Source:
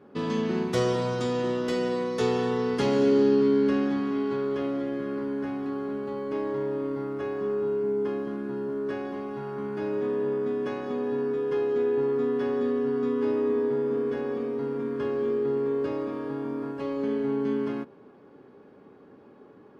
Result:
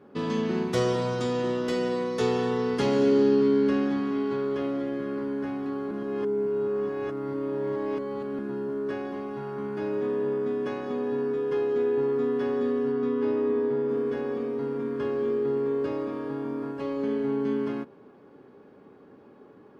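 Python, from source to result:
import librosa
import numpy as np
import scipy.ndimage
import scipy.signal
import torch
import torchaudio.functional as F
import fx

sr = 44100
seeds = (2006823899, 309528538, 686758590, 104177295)

y = fx.air_absorb(x, sr, metres=72.0, at=(12.92, 13.89))
y = fx.edit(y, sr, fx.reverse_span(start_s=5.91, length_s=2.48), tone=tone)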